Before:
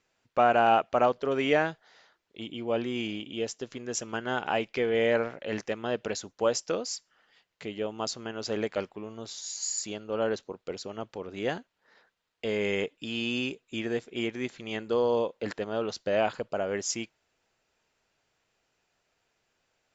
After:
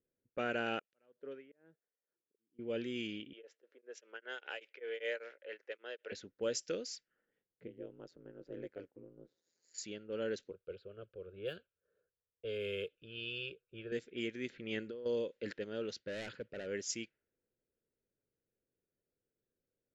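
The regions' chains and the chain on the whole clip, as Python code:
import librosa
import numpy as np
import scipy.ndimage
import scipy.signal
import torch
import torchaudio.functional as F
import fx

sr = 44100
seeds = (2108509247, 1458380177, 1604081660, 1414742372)

y = fx.chain(x, sr, fx.highpass(hz=290.0, slope=6),
    fx.auto_swell(attack_ms=739.0),
    fx.tremolo_db(hz=2.1, depth_db=19), at=(0.79, 2.59))
y = fx.chain(y, sr, fx.highpass(hz=480.0, slope=24),
    fx.tremolo_abs(hz=5.1), at=(3.33, 6.12))
y = fx.chain(y, sr, fx.highpass(hz=290.0, slope=6),
    fx.peak_eq(hz=2600.0, db=-11.0, octaves=2.5),
    fx.ring_mod(carrier_hz=85.0), at=(7.67, 9.74))
y = fx.chain(y, sr, fx.block_float(bits=7),
    fx.peak_eq(hz=81.0, db=8.0, octaves=0.76),
    fx.fixed_phaser(hz=1300.0, stages=8), at=(10.51, 13.92))
y = fx.chain(y, sr, fx.lowpass(hz=3400.0, slope=6),
    fx.over_compress(threshold_db=-33.0, ratio=-1.0), at=(14.49, 15.06))
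y = fx.chain(y, sr, fx.highpass(hz=55.0, slope=24),
    fx.low_shelf(hz=94.0, db=8.5),
    fx.clip_hard(threshold_db=-28.0), at=(15.98, 16.67))
y = fx.low_shelf(y, sr, hz=160.0, db=-4.5)
y = fx.env_lowpass(y, sr, base_hz=610.0, full_db=-26.5)
y = fx.band_shelf(y, sr, hz=890.0, db=-15.5, octaves=1.1)
y = y * librosa.db_to_amplitude(-7.0)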